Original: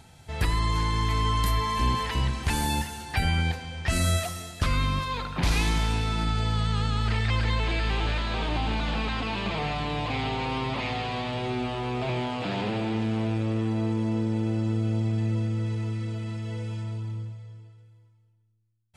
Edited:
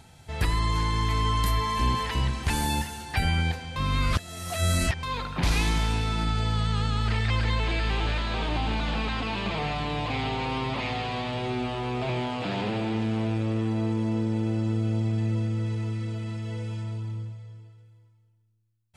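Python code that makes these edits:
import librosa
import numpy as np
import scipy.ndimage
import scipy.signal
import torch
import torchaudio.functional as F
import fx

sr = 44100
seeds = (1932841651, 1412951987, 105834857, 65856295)

y = fx.edit(x, sr, fx.reverse_span(start_s=3.76, length_s=1.27), tone=tone)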